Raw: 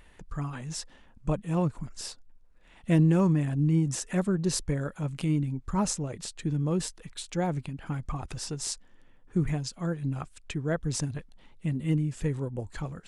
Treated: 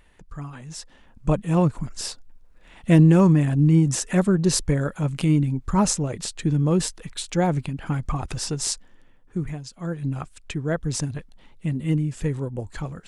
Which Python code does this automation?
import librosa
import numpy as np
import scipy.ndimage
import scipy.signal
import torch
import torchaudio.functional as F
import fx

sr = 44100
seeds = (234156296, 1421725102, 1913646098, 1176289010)

y = fx.gain(x, sr, db=fx.line((0.71, -1.5), (1.33, 7.5), (8.69, 7.5), (9.65, -4.0), (10.0, 4.0)))